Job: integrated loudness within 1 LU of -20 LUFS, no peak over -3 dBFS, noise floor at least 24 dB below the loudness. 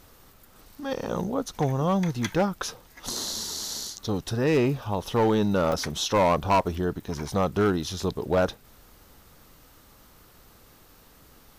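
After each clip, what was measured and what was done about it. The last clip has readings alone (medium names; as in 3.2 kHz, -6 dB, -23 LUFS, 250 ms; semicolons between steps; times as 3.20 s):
clipped samples 0.8%; clipping level -16.0 dBFS; dropouts 1; longest dropout 2.2 ms; loudness -26.5 LUFS; peak level -16.0 dBFS; loudness target -20.0 LUFS
-> clip repair -16 dBFS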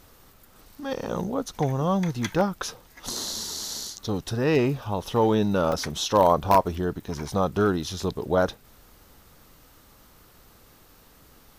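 clipped samples 0.0%; dropouts 1; longest dropout 2.2 ms
-> interpolate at 5.72 s, 2.2 ms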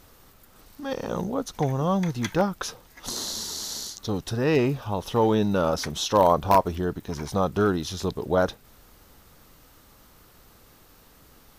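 dropouts 0; loudness -25.5 LUFS; peak level -7.0 dBFS; loudness target -20.0 LUFS
-> trim +5.5 dB; peak limiter -3 dBFS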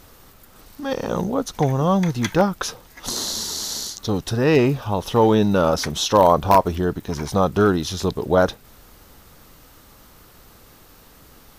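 loudness -20.5 LUFS; peak level -3.0 dBFS; noise floor -49 dBFS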